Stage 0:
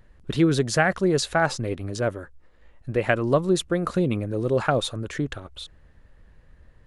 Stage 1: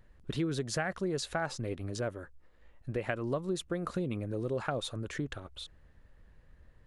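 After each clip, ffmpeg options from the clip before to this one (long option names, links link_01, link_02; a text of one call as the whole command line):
ffmpeg -i in.wav -af "acompressor=threshold=-26dB:ratio=2.5,volume=-6dB" out.wav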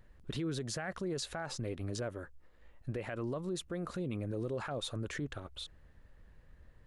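ffmpeg -i in.wav -af "alimiter=level_in=5.5dB:limit=-24dB:level=0:latency=1:release=46,volume=-5.5dB" out.wav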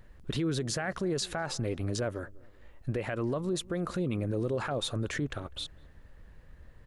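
ffmpeg -i in.wav -filter_complex "[0:a]asplit=2[link_01][link_02];[link_02]adelay=200,lowpass=frequency=840:poles=1,volume=-21dB,asplit=2[link_03][link_04];[link_04]adelay=200,lowpass=frequency=840:poles=1,volume=0.45,asplit=2[link_05][link_06];[link_06]adelay=200,lowpass=frequency=840:poles=1,volume=0.45[link_07];[link_01][link_03][link_05][link_07]amix=inputs=4:normalize=0,volume=6dB" out.wav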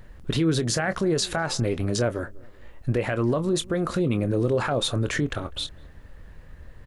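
ffmpeg -i in.wav -filter_complex "[0:a]asplit=2[link_01][link_02];[link_02]adelay=25,volume=-12dB[link_03];[link_01][link_03]amix=inputs=2:normalize=0,volume=7.5dB" out.wav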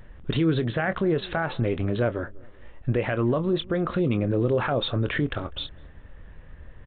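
ffmpeg -i in.wav -af "aresample=8000,aresample=44100" out.wav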